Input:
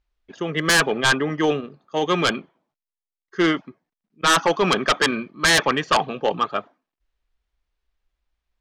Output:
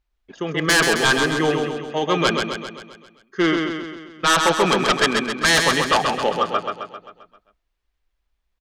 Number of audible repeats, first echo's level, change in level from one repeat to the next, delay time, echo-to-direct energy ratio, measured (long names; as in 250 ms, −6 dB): 6, −4.5 dB, −5.0 dB, 132 ms, −3.0 dB